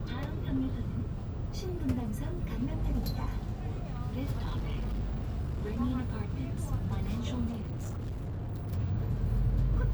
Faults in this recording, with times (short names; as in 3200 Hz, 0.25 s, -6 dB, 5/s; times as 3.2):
4.38–5.78 clipped -29.5 dBFS
7.5–8.73 clipped -33.5 dBFS